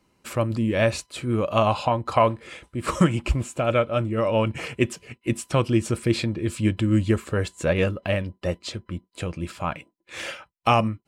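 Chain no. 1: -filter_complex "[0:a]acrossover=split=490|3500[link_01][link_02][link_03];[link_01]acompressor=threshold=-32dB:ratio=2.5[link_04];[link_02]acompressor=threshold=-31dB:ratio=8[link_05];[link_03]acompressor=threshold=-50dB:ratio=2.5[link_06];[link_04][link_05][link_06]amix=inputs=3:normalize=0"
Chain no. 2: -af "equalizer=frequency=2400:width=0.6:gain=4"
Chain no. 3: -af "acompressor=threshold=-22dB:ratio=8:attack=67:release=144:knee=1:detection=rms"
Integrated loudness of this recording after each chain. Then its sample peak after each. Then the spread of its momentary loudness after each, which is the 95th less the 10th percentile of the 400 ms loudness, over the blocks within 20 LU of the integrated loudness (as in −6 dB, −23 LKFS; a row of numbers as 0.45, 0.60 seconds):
−32.0, −23.5, −27.0 LKFS; −11.5, −3.5, −8.0 dBFS; 7, 11, 9 LU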